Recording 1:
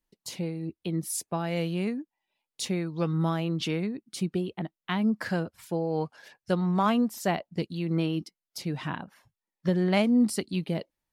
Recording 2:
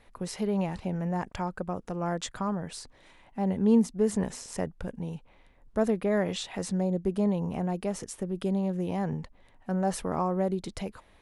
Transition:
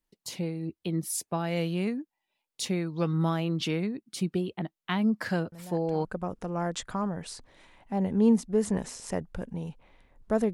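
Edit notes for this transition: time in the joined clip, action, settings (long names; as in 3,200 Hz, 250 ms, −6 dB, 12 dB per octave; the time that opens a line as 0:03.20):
recording 1
0:05.52: mix in recording 2 from 0:00.98 0.53 s −14.5 dB
0:06.05: continue with recording 2 from 0:01.51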